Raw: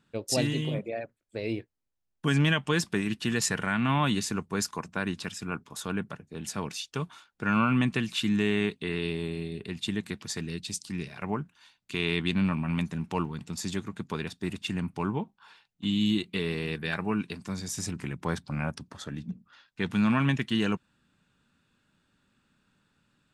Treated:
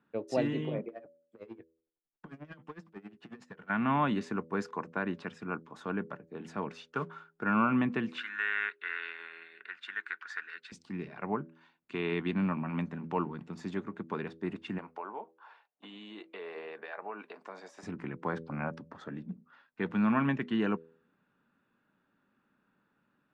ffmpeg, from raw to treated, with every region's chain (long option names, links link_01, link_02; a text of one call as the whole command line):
ffmpeg -i in.wav -filter_complex "[0:a]asettb=1/sr,asplit=3[link_01][link_02][link_03];[link_01]atrim=end=0.884[link_04];[link_02]atrim=start=0.88:end=3.7,asetpts=PTS-STARTPTS,afade=type=in:duration=0.004:curve=qsin,afade=type=out:start_time=2.816:duration=0.004:curve=qsin,acompressor=threshold=-37dB:ratio=2.5:attack=3.2:release=140:knee=1:detection=peak,volume=34.5dB,asoftclip=hard,volume=-34.5dB,aeval=exprs='val(0)*pow(10,-22*(0.5-0.5*cos(2*PI*11*n/s))/20)':channel_layout=same[link_05];[link_03]atrim=start=3.696[link_06];[link_04][link_05]acrossfade=duration=0.004:curve1=hsin:curve2=qsin[link_07];[link_07][link_06]acrossfade=duration=0.004:curve1=qsin:curve2=hsin,asettb=1/sr,asplit=3[link_08][link_09][link_10];[link_08]atrim=end=6.724[link_11];[link_09]atrim=start=6.72:end=7.43,asetpts=PTS-STARTPTS,afade=type=in:duration=0.004:curve=qsin,afade=type=out:start_time=0.706:duration=0.004:curve=qsin,equalizer=frequency=1400:width_type=o:width=0.36:gain=8,acrusher=bits=4:mode=log:mix=0:aa=0.000001[link_12];[link_10]atrim=start=7.426[link_13];[link_11][link_12]acrossfade=duration=0.004:curve1=hsin:curve2=qsin[link_14];[link_14][link_13]acrossfade=duration=0.004:curve1=qsin:curve2=hsin,asettb=1/sr,asplit=3[link_15][link_16][link_17];[link_15]atrim=end=8.184[link_18];[link_16]atrim=start=8.18:end=10.72,asetpts=PTS-STARTPTS,afade=type=in:duration=0.004:curve=qsin,afade=type=out:start_time=2.536:duration=0.004:curve=qsin,highpass=frequency=1500:width_type=q:width=7.7,highshelf=frequency=8200:gain=-5.5[link_19];[link_17]atrim=start=10.716[link_20];[link_18][link_19]acrossfade=duration=0.004:curve1=hsin:curve2=qsin[link_21];[link_21][link_20]acrossfade=duration=0.004:curve1=qsin:curve2=hsin,asettb=1/sr,asplit=3[link_22][link_23][link_24];[link_22]atrim=end=14.784[link_25];[link_23]atrim=start=14.78:end=17.83,asetpts=PTS-STARTPTS,afade=type=in:duration=0.004:curve=qsin,afade=type=out:start_time=3.046:duration=0.004:curve=qsin,highpass=frequency=600:width_type=q:width=1.9,acompressor=threshold=-37dB:ratio=3:attack=3.2:release=140:knee=1:detection=peak[link_26];[link_24]atrim=start=17.826[link_27];[link_25][link_26]acrossfade=duration=0.004:curve1=hsin:curve2=qsin[link_28];[link_28][link_27]acrossfade=duration=0.004:curve1=qsin:curve2=hsin,lowpass=5600,acrossover=split=180 2000:gain=0.158 1 0.126[link_29][link_30][link_31];[link_29][link_30][link_31]amix=inputs=3:normalize=0,bandreject=frequency=81.67:width_type=h:width=4,bandreject=frequency=163.34:width_type=h:width=4,bandreject=frequency=245.01:width_type=h:width=4,bandreject=frequency=326.68:width_type=h:width=4,bandreject=frequency=408.35:width_type=h:width=4,bandreject=frequency=490.02:width_type=h:width=4,bandreject=frequency=571.69:width_type=h:width=4" out.wav